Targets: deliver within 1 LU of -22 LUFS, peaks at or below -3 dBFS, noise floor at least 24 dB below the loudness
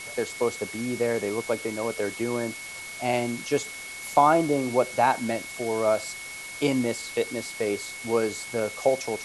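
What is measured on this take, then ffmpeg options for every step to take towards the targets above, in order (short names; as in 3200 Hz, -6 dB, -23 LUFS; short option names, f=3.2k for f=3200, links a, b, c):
steady tone 2200 Hz; tone level -38 dBFS; noise floor -39 dBFS; noise floor target -51 dBFS; loudness -27.0 LUFS; peak -5.5 dBFS; loudness target -22.0 LUFS
-> -af "bandreject=f=2.2k:w=30"
-af "afftdn=nr=12:nf=-39"
-af "volume=5dB,alimiter=limit=-3dB:level=0:latency=1"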